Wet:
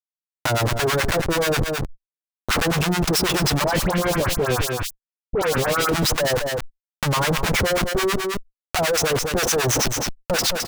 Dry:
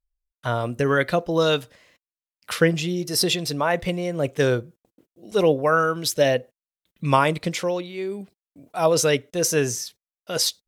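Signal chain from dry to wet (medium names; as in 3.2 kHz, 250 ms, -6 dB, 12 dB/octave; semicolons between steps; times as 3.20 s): fifteen-band graphic EQ 250 Hz -12 dB, 4 kHz -4 dB, 10 kHz -5 dB; Schmitt trigger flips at -33.5 dBFS; harmonic tremolo 9.3 Hz, depth 100%, crossover 900 Hz; 3.64–5.89 s: phase dispersion highs, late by 84 ms, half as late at 1.8 kHz; saturation -23 dBFS, distortion -19 dB; delay 213 ms -14 dB; level flattener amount 70%; trim +8.5 dB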